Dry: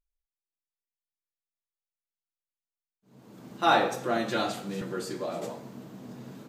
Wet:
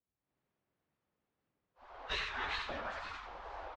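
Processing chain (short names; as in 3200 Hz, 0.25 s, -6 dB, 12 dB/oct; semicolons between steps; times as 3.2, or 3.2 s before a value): median filter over 9 samples; LPF 5600 Hz 24 dB/oct; tilt -4 dB/oct; compressor 1.5:1, threshold -31 dBFS, peak gain reduction 6 dB; spectral gate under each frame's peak -25 dB weak; feedback echo 0.155 s, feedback 33%, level -6.5 dB; AGC gain up to 11 dB; de-hum 84.28 Hz, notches 4; plain phase-vocoder stretch 0.58×; wow and flutter 130 cents; gain +2.5 dB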